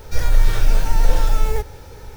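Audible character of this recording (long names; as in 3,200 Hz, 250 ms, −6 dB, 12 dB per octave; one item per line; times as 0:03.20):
background noise floor −39 dBFS
spectral slope −4.5 dB per octave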